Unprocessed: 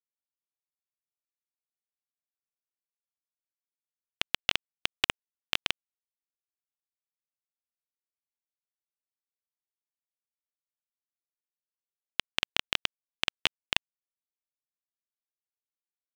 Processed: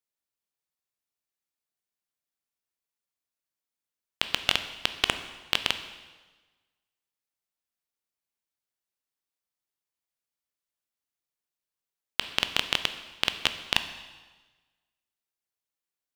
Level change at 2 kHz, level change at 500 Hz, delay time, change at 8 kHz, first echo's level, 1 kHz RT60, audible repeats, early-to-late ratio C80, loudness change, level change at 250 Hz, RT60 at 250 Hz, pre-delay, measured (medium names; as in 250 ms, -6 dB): +2.5 dB, +5.0 dB, no echo, +4.5 dB, no echo, 1.3 s, no echo, 12.5 dB, +3.0 dB, +5.0 dB, 1.3 s, 8 ms